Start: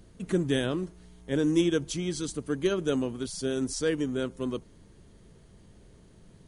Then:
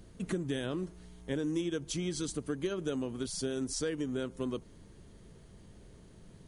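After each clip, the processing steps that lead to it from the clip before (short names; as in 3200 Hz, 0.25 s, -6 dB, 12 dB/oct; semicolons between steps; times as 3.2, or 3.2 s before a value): compressor 5:1, threshold -31 dBFS, peak gain reduction 11 dB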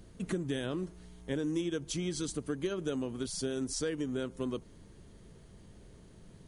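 nothing audible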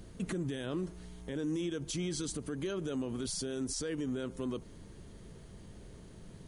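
limiter -31.5 dBFS, peak gain reduction 10.5 dB; gain +3.5 dB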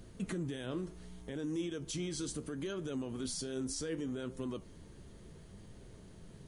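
flange 0.69 Hz, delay 7.3 ms, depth 8.6 ms, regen +70%; gain +2 dB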